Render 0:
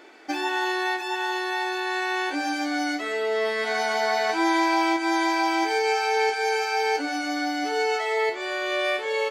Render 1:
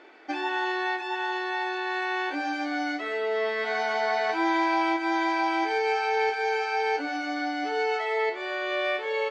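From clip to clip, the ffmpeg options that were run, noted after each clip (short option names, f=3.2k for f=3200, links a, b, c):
-af "lowpass=5.3k,bass=f=250:g=-5,treble=f=4k:g=-6,acontrast=90,volume=-9dB"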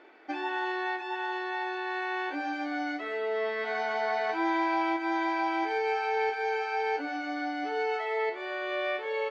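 -af "highshelf=f=5.6k:g=-12,volume=-3dB"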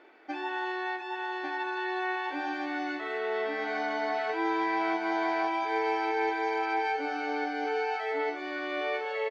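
-af "aecho=1:1:1148:0.596,volume=-1.5dB"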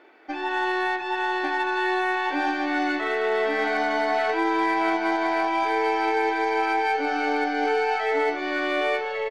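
-af "dynaudnorm=f=190:g=5:m=6dB,alimiter=limit=-17.5dB:level=0:latency=1:release=314,aeval=exprs='0.133*(cos(1*acos(clip(val(0)/0.133,-1,1)))-cos(1*PI/2))+0.000944*(cos(6*acos(clip(val(0)/0.133,-1,1)))-cos(6*PI/2))+0.00299*(cos(8*acos(clip(val(0)/0.133,-1,1)))-cos(8*PI/2))':c=same,volume=3dB"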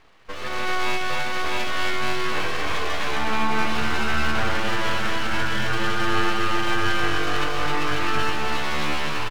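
-filter_complex "[0:a]asplit=2[a][b];[b]aecho=0:1:113.7|198.3:0.447|0.282[c];[a][c]amix=inputs=2:normalize=0,aeval=exprs='abs(val(0))':c=same,asplit=2[d][e];[e]aecho=0:1:265:0.708[f];[d][f]amix=inputs=2:normalize=0"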